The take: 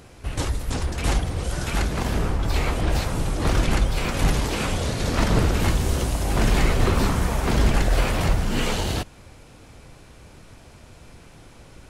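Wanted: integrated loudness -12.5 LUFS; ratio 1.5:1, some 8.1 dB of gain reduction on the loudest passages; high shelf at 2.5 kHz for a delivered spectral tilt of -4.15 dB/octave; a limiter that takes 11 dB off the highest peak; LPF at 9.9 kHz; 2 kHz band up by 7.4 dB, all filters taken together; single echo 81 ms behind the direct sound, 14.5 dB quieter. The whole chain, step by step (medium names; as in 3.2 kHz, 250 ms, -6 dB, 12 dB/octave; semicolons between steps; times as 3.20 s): low-pass 9.9 kHz; peaking EQ 2 kHz +7.5 dB; treble shelf 2.5 kHz +3.5 dB; compression 1.5:1, threshold -37 dBFS; peak limiter -24.5 dBFS; delay 81 ms -14.5 dB; trim +21.5 dB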